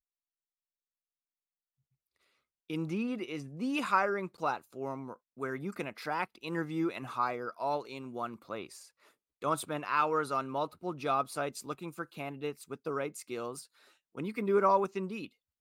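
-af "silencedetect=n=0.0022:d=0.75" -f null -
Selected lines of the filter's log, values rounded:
silence_start: 0.00
silence_end: 2.70 | silence_duration: 2.70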